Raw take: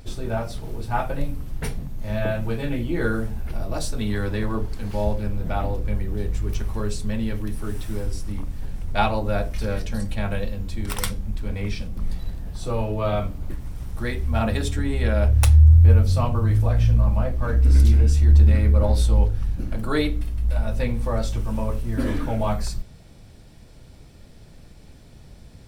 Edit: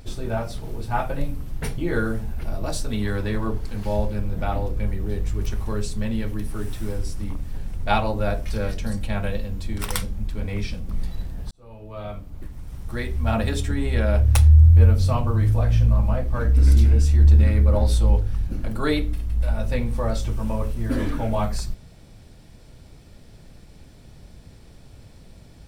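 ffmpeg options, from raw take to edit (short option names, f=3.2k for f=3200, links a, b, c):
-filter_complex "[0:a]asplit=3[a][b][c];[a]atrim=end=1.782[d];[b]atrim=start=2.858:end=12.59,asetpts=PTS-STARTPTS,afade=t=out:st=9.728:d=0.004:c=hsin[e];[c]atrim=start=12.59,asetpts=PTS-STARTPTS,afade=t=in:d=1.76[f];[e][f]concat=n=2:v=0:a=1[g];[d][g]acrossfade=d=0.004:c1=hsin:c2=hsin"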